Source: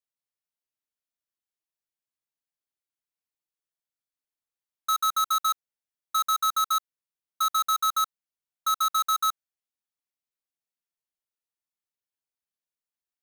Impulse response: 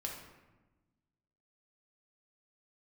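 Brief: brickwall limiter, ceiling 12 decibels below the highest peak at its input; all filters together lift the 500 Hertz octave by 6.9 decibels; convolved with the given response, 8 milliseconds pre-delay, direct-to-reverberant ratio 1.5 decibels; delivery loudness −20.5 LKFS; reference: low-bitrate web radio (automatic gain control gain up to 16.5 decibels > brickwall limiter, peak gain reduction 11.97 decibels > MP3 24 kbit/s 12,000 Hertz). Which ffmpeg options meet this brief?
-filter_complex "[0:a]equalizer=frequency=500:width_type=o:gain=8.5,alimiter=level_in=7dB:limit=-24dB:level=0:latency=1,volume=-7dB,asplit=2[link_01][link_02];[1:a]atrim=start_sample=2205,adelay=8[link_03];[link_02][link_03]afir=irnorm=-1:irlink=0,volume=-1.5dB[link_04];[link_01][link_04]amix=inputs=2:normalize=0,dynaudnorm=maxgain=16.5dB,alimiter=level_in=12.5dB:limit=-24dB:level=0:latency=1,volume=-12.5dB,volume=23.5dB" -ar 12000 -c:a libmp3lame -b:a 24k

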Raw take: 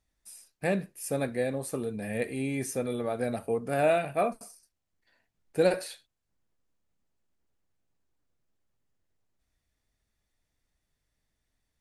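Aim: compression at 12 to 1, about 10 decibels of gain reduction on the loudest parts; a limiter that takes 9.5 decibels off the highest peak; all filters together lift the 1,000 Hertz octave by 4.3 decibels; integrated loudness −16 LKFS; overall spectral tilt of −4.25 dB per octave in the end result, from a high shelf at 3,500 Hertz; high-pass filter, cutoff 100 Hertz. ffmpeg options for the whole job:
ffmpeg -i in.wav -af "highpass=100,equalizer=frequency=1000:width_type=o:gain=7,highshelf=frequency=3500:gain=4,acompressor=threshold=-27dB:ratio=12,volume=21dB,alimiter=limit=-5.5dB:level=0:latency=1" out.wav

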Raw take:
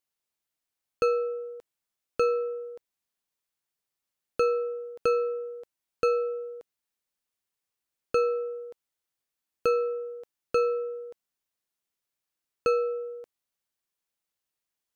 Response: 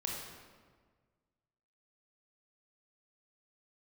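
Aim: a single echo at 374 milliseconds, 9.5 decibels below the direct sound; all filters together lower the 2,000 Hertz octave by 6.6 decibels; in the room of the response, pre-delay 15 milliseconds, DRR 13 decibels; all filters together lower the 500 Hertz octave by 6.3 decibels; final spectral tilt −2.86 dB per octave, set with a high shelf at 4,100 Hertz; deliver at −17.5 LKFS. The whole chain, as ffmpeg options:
-filter_complex "[0:a]equalizer=frequency=500:width_type=o:gain=-6,equalizer=frequency=2000:width_type=o:gain=-8.5,highshelf=frequency=4100:gain=-4,aecho=1:1:374:0.335,asplit=2[link_01][link_02];[1:a]atrim=start_sample=2205,adelay=15[link_03];[link_02][link_03]afir=irnorm=-1:irlink=0,volume=-15dB[link_04];[link_01][link_04]amix=inputs=2:normalize=0,volume=17dB"

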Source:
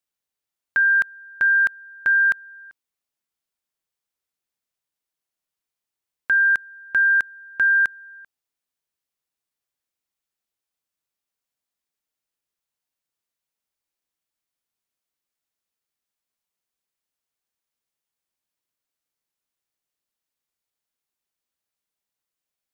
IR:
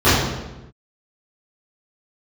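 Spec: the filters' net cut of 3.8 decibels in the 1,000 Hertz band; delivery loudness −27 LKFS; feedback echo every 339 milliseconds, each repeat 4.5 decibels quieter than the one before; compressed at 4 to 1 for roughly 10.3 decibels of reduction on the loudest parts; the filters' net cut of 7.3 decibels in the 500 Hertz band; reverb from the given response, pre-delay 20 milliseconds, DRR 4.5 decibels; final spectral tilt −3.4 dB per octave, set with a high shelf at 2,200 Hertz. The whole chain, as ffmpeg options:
-filter_complex "[0:a]equalizer=frequency=500:width_type=o:gain=-8,equalizer=frequency=1000:width_type=o:gain=-6.5,highshelf=frequency=2200:gain=5.5,acompressor=threshold=-29dB:ratio=4,aecho=1:1:339|678|1017|1356|1695|2034|2373|2712|3051:0.596|0.357|0.214|0.129|0.0772|0.0463|0.0278|0.0167|0.01,asplit=2[link_01][link_02];[1:a]atrim=start_sample=2205,adelay=20[link_03];[link_02][link_03]afir=irnorm=-1:irlink=0,volume=-31.5dB[link_04];[link_01][link_04]amix=inputs=2:normalize=0,volume=-0.5dB"

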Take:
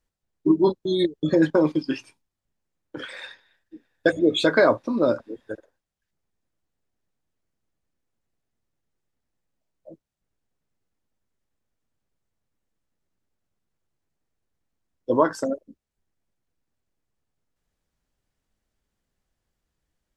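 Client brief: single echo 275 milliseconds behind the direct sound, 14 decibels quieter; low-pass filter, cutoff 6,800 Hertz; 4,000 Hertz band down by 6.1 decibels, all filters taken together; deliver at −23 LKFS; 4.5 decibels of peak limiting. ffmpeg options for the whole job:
ffmpeg -i in.wav -af "lowpass=6800,equalizer=frequency=4000:width_type=o:gain=-7,alimiter=limit=-11.5dB:level=0:latency=1,aecho=1:1:275:0.2,volume=1.5dB" out.wav

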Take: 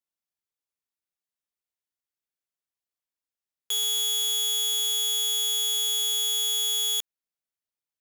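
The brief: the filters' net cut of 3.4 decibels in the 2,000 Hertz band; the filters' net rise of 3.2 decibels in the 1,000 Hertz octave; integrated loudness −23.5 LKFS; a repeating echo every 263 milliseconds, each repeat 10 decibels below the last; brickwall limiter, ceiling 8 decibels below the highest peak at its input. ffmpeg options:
ffmpeg -i in.wav -af "equalizer=frequency=1000:width_type=o:gain=5.5,equalizer=frequency=2000:width_type=o:gain=-5.5,alimiter=level_in=4.5dB:limit=-24dB:level=0:latency=1,volume=-4.5dB,aecho=1:1:263|526|789|1052:0.316|0.101|0.0324|0.0104,volume=9dB" out.wav

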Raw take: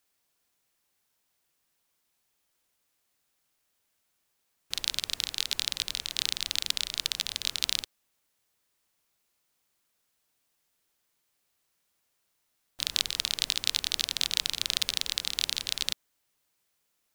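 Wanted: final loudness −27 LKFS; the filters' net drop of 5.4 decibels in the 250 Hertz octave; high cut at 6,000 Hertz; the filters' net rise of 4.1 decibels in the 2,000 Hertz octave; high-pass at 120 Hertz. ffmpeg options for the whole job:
ffmpeg -i in.wav -af "highpass=120,lowpass=6000,equalizer=frequency=250:width_type=o:gain=-7,equalizer=frequency=2000:width_type=o:gain=5.5,volume=2dB" out.wav

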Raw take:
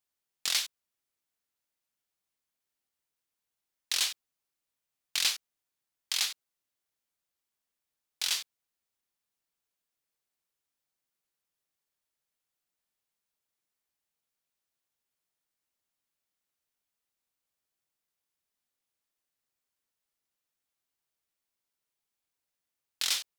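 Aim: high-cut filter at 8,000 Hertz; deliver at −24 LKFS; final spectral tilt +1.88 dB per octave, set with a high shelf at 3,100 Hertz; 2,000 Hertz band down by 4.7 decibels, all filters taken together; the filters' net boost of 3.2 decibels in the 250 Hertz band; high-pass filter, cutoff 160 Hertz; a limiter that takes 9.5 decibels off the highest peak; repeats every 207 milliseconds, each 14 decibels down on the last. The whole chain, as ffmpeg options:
ffmpeg -i in.wav -af "highpass=160,lowpass=8000,equalizer=frequency=250:width_type=o:gain=5,equalizer=frequency=2000:width_type=o:gain=-8,highshelf=frequency=3100:gain=3.5,alimiter=limit=-23dB:level=0:latency=1,aecho=1:1:207|414:0.2|0.0399,volume=12.5dB" out.wav

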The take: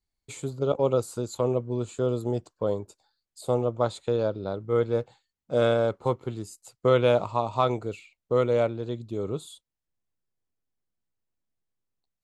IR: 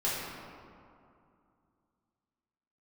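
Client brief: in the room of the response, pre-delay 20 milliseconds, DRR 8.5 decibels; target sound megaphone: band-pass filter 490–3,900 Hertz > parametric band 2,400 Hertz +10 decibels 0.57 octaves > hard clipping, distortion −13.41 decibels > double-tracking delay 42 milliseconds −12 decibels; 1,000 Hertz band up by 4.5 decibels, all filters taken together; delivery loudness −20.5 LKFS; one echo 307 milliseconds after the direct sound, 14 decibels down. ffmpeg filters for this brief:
-filter_complex "[0:a]equalizer=frequency=1000:width_type=o:gain=5.5,aecho=1:1:307:0.2,asplit=2[link_01][link_02];[1:a]atrim=start_sample=2205,adelay=20[link_03];[link_02][link_03]afir=irnorm=-1:irlink=0,volume=-17dB[link_04];[link_01][link_04]amix=inputs=2:normalize=0,highpass=490,lowpass=3900,equalizer=frequency=2400:width_type=o:width=0.57:gain=10,asoftclip=type=hard:threshold=-17dB,asplit=2[link_05][link_06];[link_06]adelay=42,volume=-12dB[link_07];[link_05][link_07]amix=inputs=2:normalize=0,volume=7.5dB"

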